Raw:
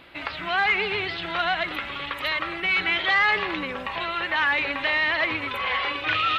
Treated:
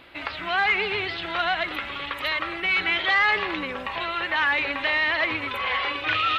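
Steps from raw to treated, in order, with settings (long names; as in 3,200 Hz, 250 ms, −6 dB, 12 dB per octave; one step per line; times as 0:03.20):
parametric band 160 Hz −8 dB 0.27 octaves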